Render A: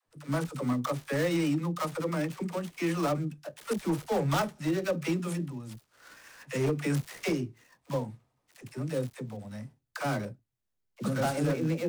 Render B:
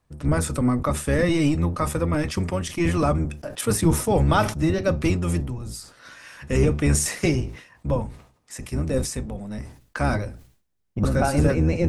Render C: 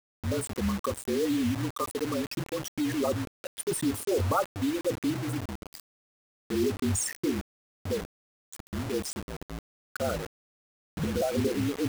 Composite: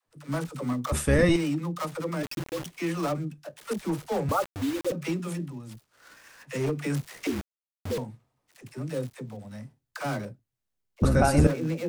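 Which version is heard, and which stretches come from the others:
A
0.92–1.36 from B
2.23–2.66 from C
4.29–4.92 from C
7.27–7.98 from C
11.02–11.47 from B

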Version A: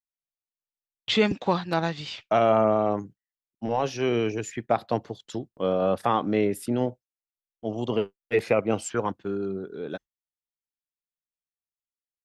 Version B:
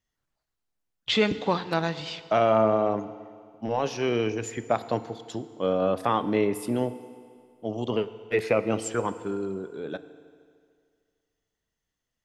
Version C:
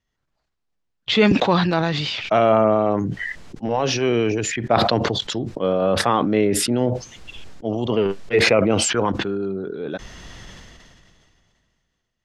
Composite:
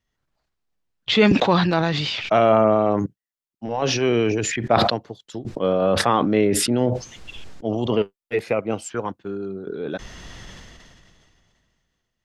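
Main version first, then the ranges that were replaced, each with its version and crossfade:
C
3.06–3.82 from A
4.9–5.45 from A
8.02–9.67 from A
not used: B

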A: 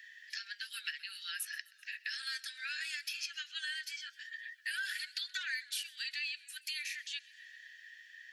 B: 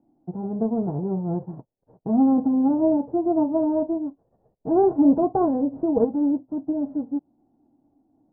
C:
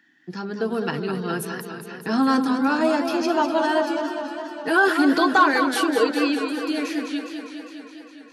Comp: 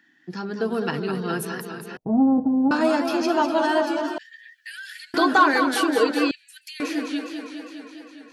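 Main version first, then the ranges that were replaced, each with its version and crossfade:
C
1.97–2.71 from B
4.18–5.14 from A
6.31–6.8 from A

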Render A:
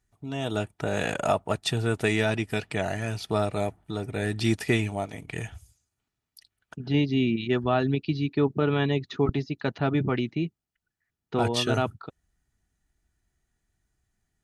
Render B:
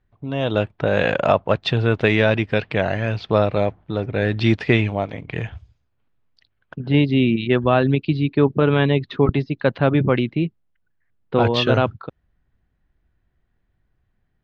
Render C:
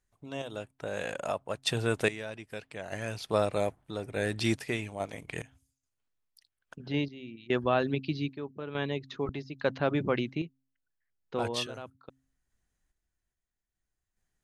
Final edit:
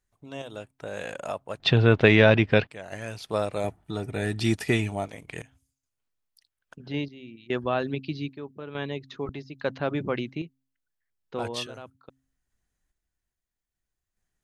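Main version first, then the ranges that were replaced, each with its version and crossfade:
C
1.6–2.67 from B
3.64–5.08 from A

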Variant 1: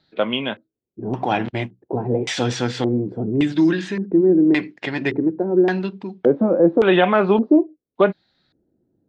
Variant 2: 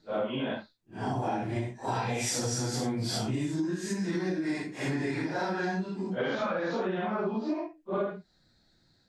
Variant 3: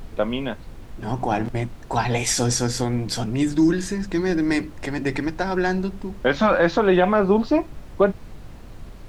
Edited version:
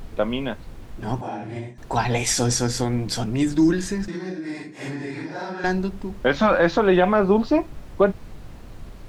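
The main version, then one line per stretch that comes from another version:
3
1.21–1.78 from 2
4.08–5.64 from 2
not used: 1

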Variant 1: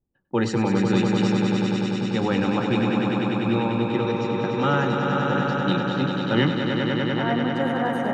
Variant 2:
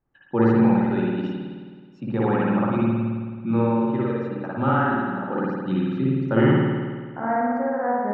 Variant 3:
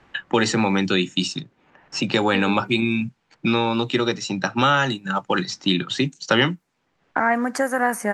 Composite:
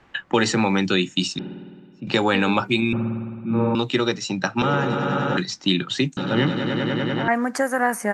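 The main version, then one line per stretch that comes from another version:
3
1.39–2.07 from 2
2.93–3.75 from 2
4.62–5.37 from 1
6.17–7.28 from 1

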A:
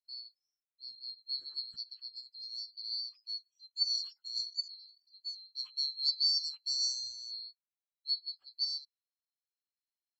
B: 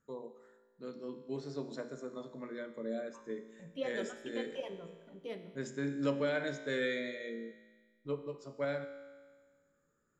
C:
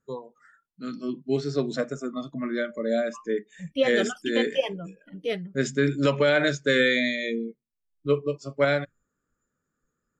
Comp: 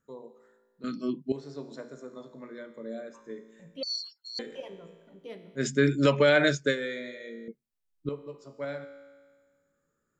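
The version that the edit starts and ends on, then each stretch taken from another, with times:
B
0.84–1.32 from C
3.83–4.39 from A
5.61–6.71 from C, crossfade 0.10 s
7.48–8.09 from C

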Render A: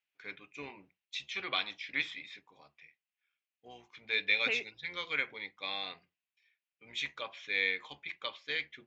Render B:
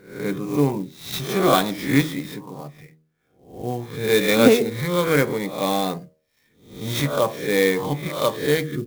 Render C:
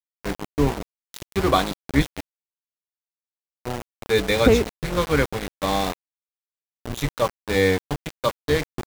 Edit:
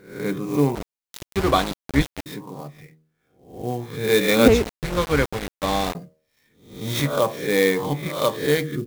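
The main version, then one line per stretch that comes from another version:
B
0.75–2.26 from C
4.48–5.95 from C
not used: A

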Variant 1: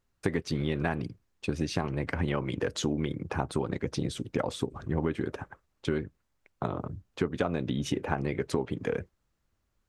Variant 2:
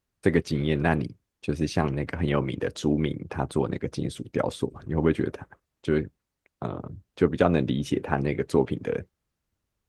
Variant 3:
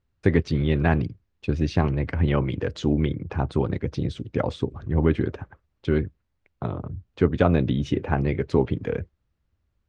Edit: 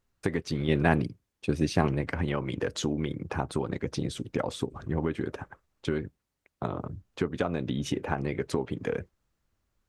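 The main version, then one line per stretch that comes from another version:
1
0.68–2.01 from 2
6.04–6.63 from 2
not used: 3

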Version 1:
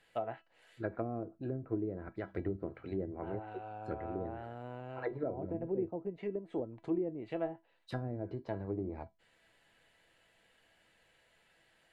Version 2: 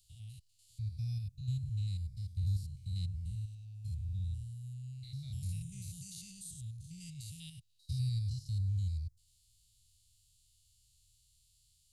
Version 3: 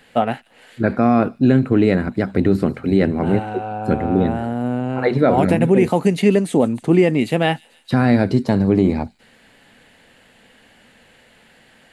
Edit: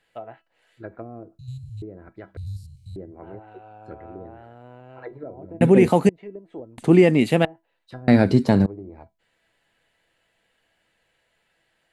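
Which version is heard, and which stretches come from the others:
1
1.39–1.82 from 2
2.37–2.96 from 2
5.61–6.09 from 3
6.78–7.45 from 3
8.08–8.66 from 3

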